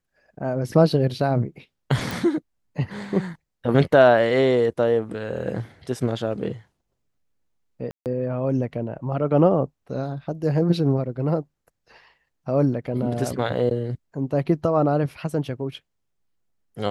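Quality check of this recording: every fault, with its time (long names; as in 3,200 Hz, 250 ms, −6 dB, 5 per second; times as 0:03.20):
0:02.11: click
0:07.91–0:08.06: drop-out 148 ms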